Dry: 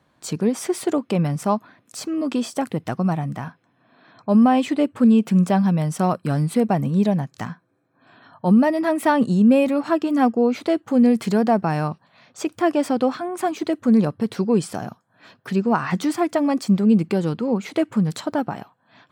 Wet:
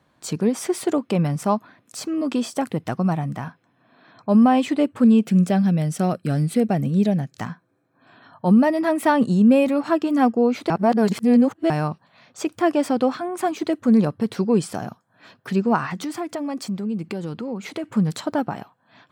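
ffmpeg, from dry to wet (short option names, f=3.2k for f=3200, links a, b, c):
-filter_complex "[0:a]asettb=1/sr,asplit=3[a][b][c];[a]atrim=end=5.244[d];[b]atrim=start=5.24:end=7.38,asetpts=PTS-STARTPTS,afade=t=in:d=0.004:c=qsin,afade=t=out:st=2.136:d=0.004:c=qsin,equalizer=f=1k:t=o:w=0.51:g=-12.5[e];[c]atrim=start=7.376[f];[d][e]acrossfade=d=0.004:c1=hsin:c2=qsin[g];[g][f]acrossfade=d=0.004:c1=qsin:c2=hsin,asettb=1/sr,asplit=3[h][i][j];[h]atrim=end=15.864[k];[i]atrim=start=15.86:end=17.84,asetpts=PTS-STARTPTS,afade=t=in:d=0.004:c=qsin,afade=t=out:st=1.976:d=0.004:c=qsin,acompressor=threshold=-28dB:ratio=2.5:attack=3.2:release=140:knee=1:detection=peak[l];[j]atrim=start=17.836[m];[k][l]acrossfade=d=0.004:c1=hsin:c2=qsin[n];[n][m]acrossfade=d=0.004:c1=qsin:c2=hsin,asplit=3[o][p][q];[o]atrim=end=10.702[r];[p]atrim=start=10.698:end=11.702,asetpts=PTS-STARTPTS,areverse[s];[q]atrim=start=11.698[t];[r][s]acrossfade=d=0.004:c1=hsin:c2=hsin[u];[u][t]acrossfade=d=0.004:c1=hsin:c2=hsin"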